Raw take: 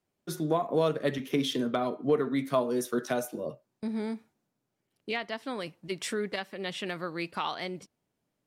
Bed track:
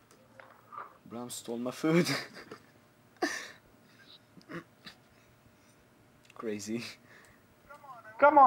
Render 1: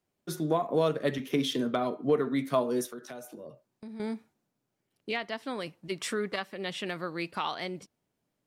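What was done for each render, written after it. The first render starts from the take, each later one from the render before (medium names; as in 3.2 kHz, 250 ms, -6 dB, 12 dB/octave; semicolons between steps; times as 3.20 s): 2.86–4.00 s: compression 2.5:1, threshold -45 dBFS; 5.97–6.45 s: peaking EQ 1.2 kHz +7.5 dB 0.36 oct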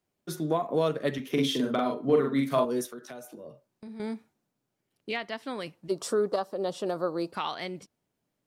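1.32–2.65 s: doubling 44 ms -2 dB; 3.40–4.03 s: doubling 44 ms -11.5 dB; 5.89–7.33 s: FFT filter 210 Hz 0 dB, 550 Hz +10 dB, 1.3 kHz +2 dB, 2.1 kHz -19 dB, 4.7 kHz +1 dB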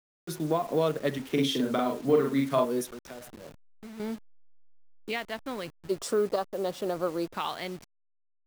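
send-on-delta sampling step -42.5 dBFS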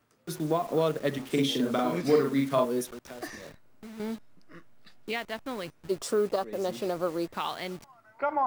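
add bed track -7.5 dB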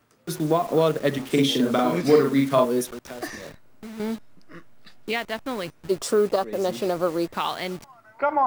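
trim +6 dB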